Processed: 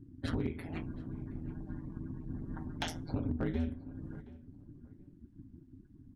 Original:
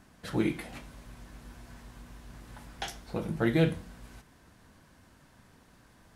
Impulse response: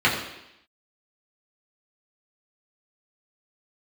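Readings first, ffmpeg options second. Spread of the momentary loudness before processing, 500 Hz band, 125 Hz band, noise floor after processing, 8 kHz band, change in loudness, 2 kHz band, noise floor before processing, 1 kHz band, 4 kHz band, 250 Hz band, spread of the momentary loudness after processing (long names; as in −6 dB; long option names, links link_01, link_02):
23 LU, −9.5 dB, −3.0 dB, −59 dBFS, −5.0 dB, −8.0 dB, −8.5 dB, −60 dBFS, −5.5 dB, −4.5 dB, −4.5 dB, 20 LU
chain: -filter_complex "[0:a]afftdn=noise_reduction=30:noise_floor=-49,equalizer=frequency=180:width=1.4:gain=14,acompressor=threshold=-33dB:ratio=10,aeval=exprs='val(0)*sin(2*PI*82*n/s)':channel_layout=same,volume=29dB,asoftclip=hard,volume=-29dB,asplit=2[link_01][link_02];[link_02]adelay=722,lowpass=frequency=2300:poles=1,volume=-19dB,asplit=2[link_03][link_04];[link_04]adelay=722,lowpass=frequency=2300:poles=1,volume=0.25[link_05];[link_01][link_03][link_05]amix=inputs=3:normalize=0,volume=5dB"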